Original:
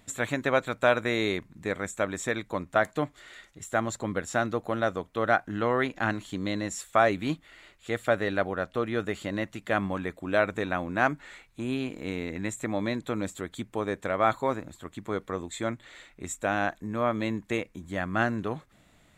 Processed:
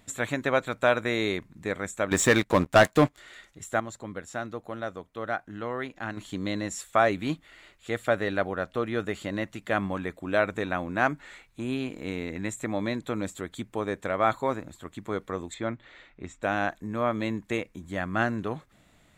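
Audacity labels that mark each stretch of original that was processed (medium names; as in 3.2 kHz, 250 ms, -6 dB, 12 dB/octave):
2.110000	3.180000	waveshaping leveller passes 3
3.800000	6.170000	gain -7 dB
15.540000	16.430000	distance through air 170 m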